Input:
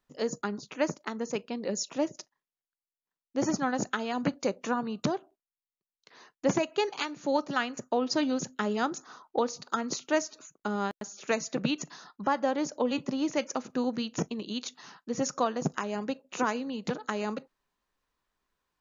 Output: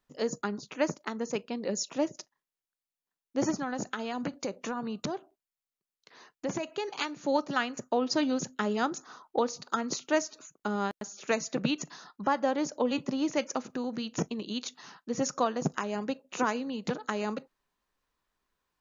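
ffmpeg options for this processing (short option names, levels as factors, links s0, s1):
-filter_complex "[0:a]asettb=1/sr,asplit=3[s0][s1][s2];[s0]atrim=end=3.514[s3];[s1]atrim=start=3.51:end=6.97,asetpts=PTS-STARTPTS,afade=t=in:d=0.004:c=qsin,afade=t=out:st=3.456:d=0.004:c=qsin,acompressor=threshold=0.0316:ratio=3:attack=3.2:release=140:knee=1:detection=peak[s4];[s2]atrim=start=6.966[s5];[s3][s4]acrossfade=d=0.004:c1=hsin:c2=qsin[s6];[s6][s5]acrossfade=d=0.004:c1=qsin:c2=hsin,asettb=1/sr,asplit=3[s7][s8][s9];[s7]atrim=end=13.614[s10];[s8]atrim=start=13.61:end=14.08,asetpts=PTS-STARTPTS,afade=t=in:d=0.004:c=qsin,afade=t=out:st=0.466:d=0.004:c=qsin,acompressor=threshold=0.0355:ratio=6:attack=3.2:release=140:knee=1:detection=peak[s11];[s9]atrim=start=14.076[s12];[s10][s11]acrossfade=d=0.004:c1=hsin:c2=qsin[s13];[s13][s12]acrossfade=d=0.004:c1=qsin:c2=hsin"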